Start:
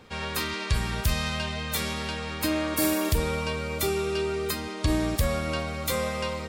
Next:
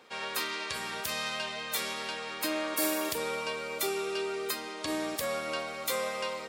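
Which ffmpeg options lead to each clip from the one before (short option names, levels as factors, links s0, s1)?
-af "highpass=390,acontrast=35,volume=0.398"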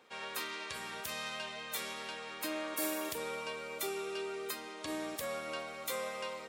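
-af "equalizer=f=4700:w=3.7:g=-3.5,volume=0.501"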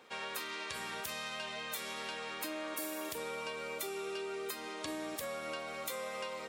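-af "acompressor=threshold=0.00891:ratio=6,volume=1.58"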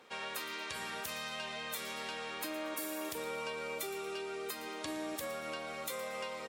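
-af "aecho=1:1:116|232|348:0.178|0.0533|0.016" -ar 44100 -c:a libvorbis -b:a 96k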